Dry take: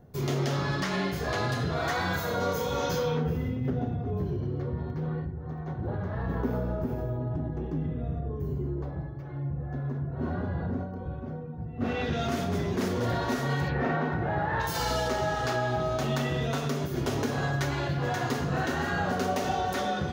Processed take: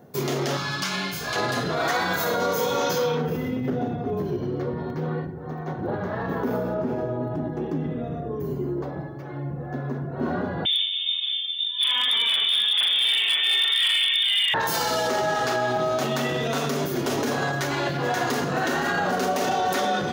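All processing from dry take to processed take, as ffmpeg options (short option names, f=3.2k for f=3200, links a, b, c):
-filter_complex "[0:a]asettb=1/sr,asplit=3[a][b][c];[a]atrim=end=0.574[d];[b]atrim=start=0.57:end=1.36,asetpts=PTS-STARTPTS,afade=t=in:d=0.004:c=qsin,afade=t=out:st=0.786:d=0.004:c=qsin,asuperstop=centerf=1900:order=8:qfactor=7,equalizer=f=440:w=0.56:g=-13.5[e];[c]atrim=start=1.356[f];[d][e]acrossfade=d=0.004:c1=hsin:c2=qsin[g];[g][f]acrossfade=d=0.004:c1=qsin:c2=hsin,asettb=1/sr,asplit=3[h][i][j];[h]atrim=end=6.744[k];[i]atrim=start=6.74:end=7.23,asetpts=PTS-STARTPTS,afade=t=in:d=0.004:c=qsin,afade=t=out:st=0.486:d=0.004:c=qsin,adynamicsmooth=sensitivity=5.5:basefreq=4.5k,highshelf=f=9.1k:g=7[l];[j]atrim=start=7.226[m];[k][l]acrossfade=d=0.004:c1=hsin:c2=qsin[n];[n][m]acrossfade=d=0.004:c1=qsin:c2=hsin,asettb=1/sr,asplit=3[o][p][q];[o]atrim=end=10.654[r];[p]atrim=start=10.65:end=14.54,asetpts=PTS-STARTPTS,afade=t=in:d=0.004:c=qsin,afade=t=out:st=3.886:d=0.004:c=qsin,lowpass=f=3.1k:t=q:w=0.5098,lowpass=f=3.1k:t=q:w=0.6013,lowpass=f=3.1k:t=q:w=0.9,lowpass=f=3.1k:t=q:w=2.563,afreqshift=-3700,asoftclip=type=hard:threshold=-22.5dB[s];[q]atrim=start=14.536[t];[r][s]acrossfade=d=0.004:c1=hsin:c2=qsin[u];[u][t]acrossfade=d=0.004:c1=qsin:c2=hsin,highshelf=f=7.2k:g=4,alimiter=limit=-23.5dB:level=0:latency=1:release=17,highpass=210,volume=8.5dB"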